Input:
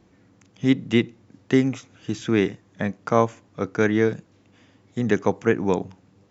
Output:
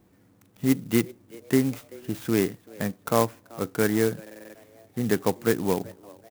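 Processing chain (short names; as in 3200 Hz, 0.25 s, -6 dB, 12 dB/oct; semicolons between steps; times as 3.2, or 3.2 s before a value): frequency-shifting echo 0.384 s, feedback 40%, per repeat +110 Hz, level -23 dB; stuck buffer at 4.22, samples 2048, times 6; clock jitter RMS 0.061 ms; gain -3 dB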